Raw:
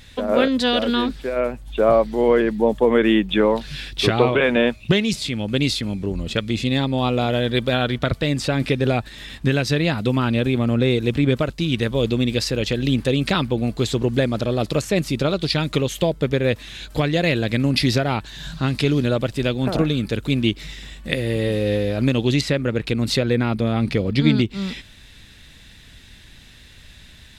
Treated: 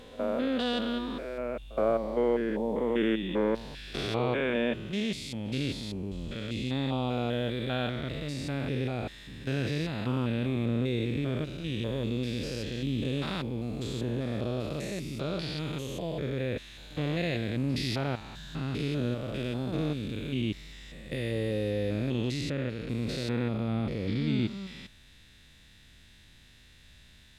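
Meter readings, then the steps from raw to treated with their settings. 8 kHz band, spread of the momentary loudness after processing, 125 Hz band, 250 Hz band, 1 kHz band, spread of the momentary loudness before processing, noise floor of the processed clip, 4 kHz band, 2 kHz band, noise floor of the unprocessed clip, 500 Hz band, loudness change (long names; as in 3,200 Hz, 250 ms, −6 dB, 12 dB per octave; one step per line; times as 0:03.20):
−13.5 dB, 7 LU, −10.5 dB, −10.5 dB, −12.0 dB, 7 LU, −56 dBFS, −12.5 dB, −12.5 dB, −46 dBFS, −11.5 dB, −11.0 dB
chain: spectrum averaged block by block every 200 ms
echo ahead of the sound 70 ms −21.5 dB
level −9 dB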